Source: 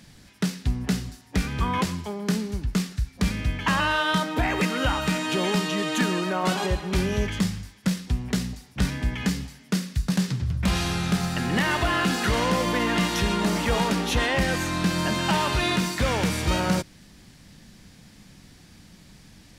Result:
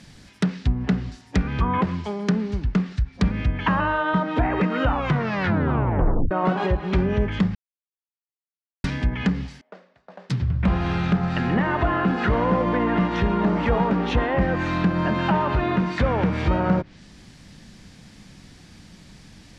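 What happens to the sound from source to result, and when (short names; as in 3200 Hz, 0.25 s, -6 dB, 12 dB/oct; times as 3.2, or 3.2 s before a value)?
4.84 tape stop 1.47 s
7.55–8.84 mute
9.61–10.3 ladder band-pass 700 Hz, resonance 55%
whole clip: Bessel low-pass 7900 Hz; treble ducked by the level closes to 1300 Hz, closed at -20 dBFS; gain +3.5 dB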